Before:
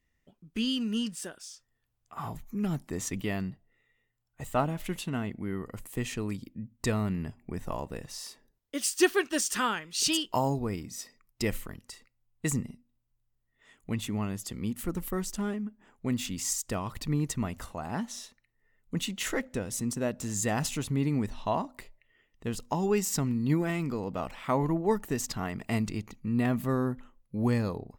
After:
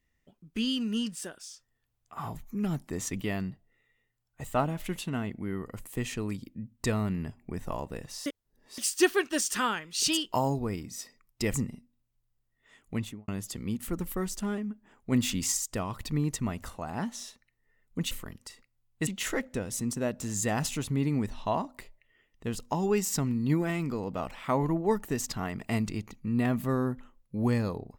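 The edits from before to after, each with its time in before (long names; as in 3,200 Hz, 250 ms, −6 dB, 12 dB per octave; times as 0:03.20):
0:08.26–0:08.78: reverse
0:11.54–0:12.50: move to 0:19.07
0:13.93–0:14.24: fade out and dull
0:16.08–0:16.48: clip gain +4.5 dB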